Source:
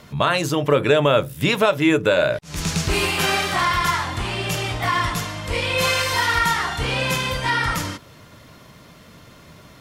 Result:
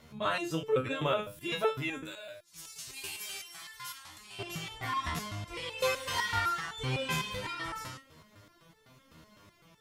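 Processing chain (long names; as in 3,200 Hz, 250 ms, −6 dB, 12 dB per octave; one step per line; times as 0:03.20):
0:02.03–0:04.39: first-order pre-emphasis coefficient 0.9
step-sequenced resonator 7.9 Hz 79–440 Hz
level −2 dB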